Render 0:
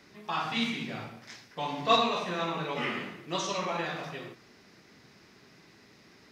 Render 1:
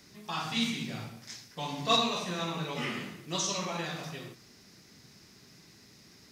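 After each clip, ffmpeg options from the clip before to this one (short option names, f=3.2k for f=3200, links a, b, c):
-af "bass=f=250:g=8,treble=f=4k:g=14,volume=-4.5dB"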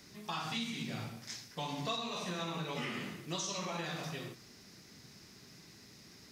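-af "acompressor=threshold=-35dB:ratio=6"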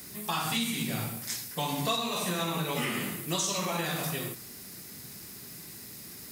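-af "aexciter=amount=7.4:drive=4.6:freq=8.1k,volume=7.5dB"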